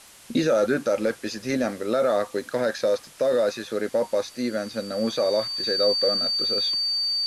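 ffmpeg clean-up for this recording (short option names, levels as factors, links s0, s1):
-af "adeclick=t=4,bandreject=f=4600:w=30,afwtdn=0.0045"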